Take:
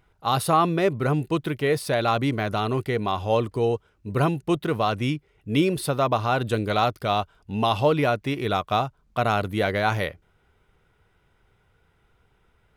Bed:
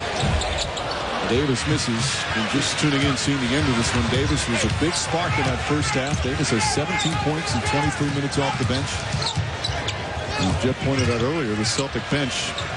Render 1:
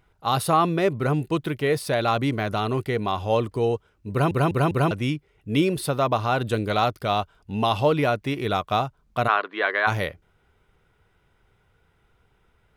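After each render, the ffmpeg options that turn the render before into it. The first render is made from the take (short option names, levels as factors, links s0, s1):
-filter_complex "[0:a]asplit=3[s0][s1][s2];[s0]afade=t=out:st=9.27:d=0.02[s3];[s1]highpass=f=370:w=0.5412,highpass=f=370:w=1.3066,equalizer=f=520:t=q:w=4:g=-5,equalizer=f=740:t=q:w=4:g=-3,equalizer=f=1100:t=q:w=4:g=10,equalizer=f=1700:t=q:w=4:g=9,lowpass=f=3800:w=0.5412,lowpass=f=3800:w=1.3066,afade=t=in:st=9.27:d=0.02,afade=t=out:st=9.86:d=0.02[s4];[s2]afade=t=in:st=9.86:d=0.02[s5];[s3][s4][s5]amix=inputs=3:normalize=0,asplit=5[s6][s7][s8][s9][s10];[s6]atrim=end=4.312[s11];[s7]atrim=start=4.108:end=4.312[s12];[s8]atrim=start=4.108:end=4.312[s13];[s9]atrim=start=4.108:end=4.312[s14];[s10]atrim=start=4.908[s15];[s11][s12]acrossfade=d=0.004:c1=hsin:c2=hsin[s16];[s16][s13]acrossfade=d=0.004:c1=hsin:c2=hsin[s17];[s17][s14]acrossfade=d=0.004:c1=hsin:c2=hsin[s18];[s18][s15]acrossfade=d=0.004:c1=hsin:c2=hsin"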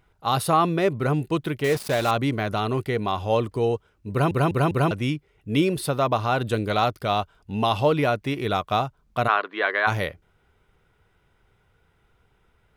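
-filter_complex "[0:a]asettb=1/sr,asplit=3[s0][s1][s2];[s0]atrim=end=1.644[s3];[s1]atrim=start=1.64:end=2.11,asetpts=PTS-STARTPTS,afade=t=in:d=0.004:c=qsin,afade=t=out:st=0.466:d=0.004:c=qsin,acrusher=bits=4:mix=0:aa=0.5[s4];[s2]atrim=start=2.106[s5];[s3][s4]acrossfade=d=0.004:c1=hsin:c2=qsin[s6];[s6][s5]acrossfade=d=0.004:c1=qsin:c2=hsin"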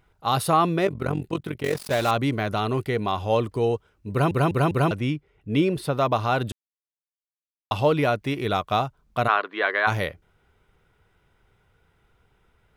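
-filter_complex "[0:a]asplit=3[s0][s1][s2];[s0]afade=t=out:st=0.85:d=0.02[s3];[s1]tremolo=f=45:d=0.857,afade=t=in:st=0.85:d=0.02,afade=t=out:st=1.9:d=0.02[s4];[s2]afade=t=in:st=1.9:d=0.02[s5];[s3][s4][s5]amix=inputs=3:normalize=0,asettb=1/sr,asplit=3[s6][s7][s8];[s6]atrim=end=5.004[s9];[s7]atrim=start=5:end=5.98,asetpts=PTS-STARTPTS,afade=t=in:d=0.004:c=qsin,afade=t=out:st=0.976:d=0.004:c=qsin,highshelf=f=4400:g=-9.5[s10];[s8]atrim=start=5.976[s11];[s9][s10]acrossfade=d=0.004:c1=hsin:c2=qsin[s12];[s12][s11]acrossfade=d=0.004:c1=qsin:c2=hsin,asplit=3[s13][s14][s15];[s13]atrim=end=6.52,asetpts=PTS-STARTPTS,afade=t=out:st=6.516:d=0.004:c=hsin[s16];[s14]atrim=start=6.52:end=7.71,asetpts=PTS-STARTPTS,volume=0[s17];[s15]atrim=start=7.71,asetpts=PTS-STARTPTS,afade=t=in:d=0.004:c=hsin[s18];[s16][s17][s18]concat=n=3:v=0:a=1"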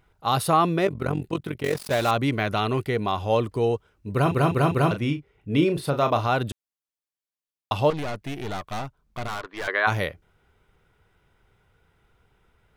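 -filter_complex "[0:a]asettb=1/sr,asplit=3[s0][s1][s2];[s0]atrim=end=2.284[s3];[s1]atrim=start=2.28:end=2.83,asetpts=PTS-STARTPTS,afade=t=in:d=0.004:c=qsin,afade=t=out:st=0.546:d=0.004:c=qsin,equalizer=f=2400:w=1.1:g=4.5[s4];[s2]atrim=start=2.826[s5];[s3][s4]acrossfade=d=0.004:c1=hsin:c2=qsin[s6];[s6][s5]acrossfade=d=0.004:c1=qsin:c2=hsin,asettb=1/sr,asplit=3[s7][s8][s9];[s7]atrim=end=4.224[s10];[s8]atrim=start=4.22:end=6.27,asetpts=PTS-STARTPTS,afade=t=in:d=0.004:c=qsin,afade=t=out:st=2.046:d=0.004:c=qsin,asplit=2[s11][s12];[s12]adelay=35,volume=0.376[s13];[s11][s13]amix=inputs=2:normalize=0,atrim=end_sample=90405[s14];[s9]atrim=start=6.266[s15];[s10][s14]acrossfade=d=0.004:c1=hsin:c2=qsin[s16];[s16][s15]acrossfade=d=0.004:c1=qsin:c2=hsin,asettb=1/sr,asplit=3[s17][s18][s19];[s17]atrim=end=7.904[s20];[s18]atrim=start=7.9:end=9.68,asetpts=PTS-STARTPTS,afade=t=in:d=0.004:c=qsin,afade=t=out:st=1.776:d=0.004:c=qsin,aeval=exprs='(tanh(25.1*val(0)+0.7)-tanh(0.7))/25.1':c=same[s21];[s19]atrim=start=9.676[s22];[s20][s21]acrossfade=d=0.004:c1=hsin:c2=qsin[s23];[s23][s22]acrossfade=d=0.004:c1=qsin:c2=hsin"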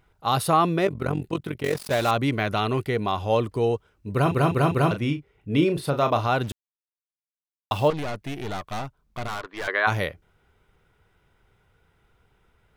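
-filter_complex "[0:a]asettb=1/sr,asplit=3[s0][s1][s2];[s0]atrim=end=6.434[s3];[s1]atrim=start=6.43:end=7.88,asetpts=PTS-STARTPTS,afade=t=in:d=0.004:c=qsin,afade=t=out:st=1.446:d=0.004:c=qsin,acrusher=bits=6:mix=0:aa=0.5[s4];[s2]atrim=start=7.876[s5];[s3][s4]acrossfade=d=0.004:c1=hsin:c2=qsin[s6];[s6][s5]acrossfade=d=0.004:c1=qsin:c2=hsin"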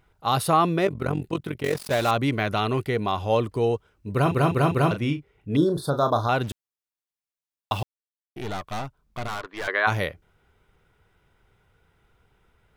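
-filter_complex "[0:a]asettb=1/sr,asplit=3[s0][s1][s2];[s0]atrim=end=5.564[s3];[s1]atrim=start=5.56:end=6.29,asetpts=PTS-STARTPTS,afade=t=in:d=0.004:c=qsin,afade=t=out:st=0.726:d=0.004:c=qsin,asuperstop=centerf=2400:order=12:qfactor=1.4[s4];[s2]atrim=start=6.286[s5];[s3][s4]acrossfade=d=0.004:c1=hsin:c2=qsin[s6];[s6][s5]acrossfade=d=0.004:c1=qsin:c2=hsin,asplit=3[s7][s8][s9];[s7]atrim=end=7.83,asetpts=PTS-STARTPTS,afade=t=out:st=7.826:d=0.004:c=hsin[s10];[s8]atrim=start=7.83:end=8.36,asetpts=PTS-STARTPTS,volume=0[s11];[s9]atrim=start=8.36,asetpts=PTS-STARTPTS,afade=t=in:d=0.004:c=hsin[s12];[s10][s11][s12]concat=n=3:v=0:a=1"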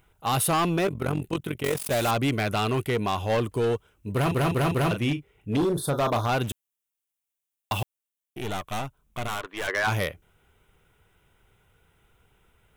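-af "aexciter=amount=1.6:drive=2.5:freq=2500,volume=10,asoftclip=hard,volume=0.1"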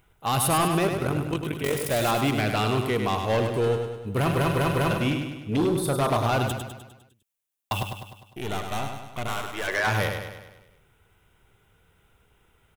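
-af "aecho=1:1:101|202|303|404|505|606|707:0.501|0.271|0.146|0.0789|0.0426|0.023|0.0124"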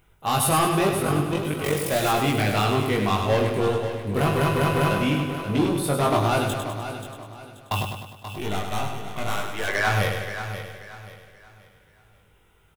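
-filter_complex "[0:a]asplit=2[s0][s1];[s1]adelay=20,volume=0.75[s2];[s0][s2]amix=inputs=2:normalize=0,aecho=1:1:532|1064|1596|2128:0.299|0.0985|0.0325|0.0107"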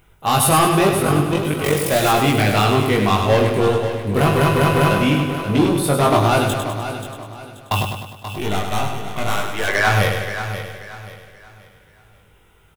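-af "volume=2"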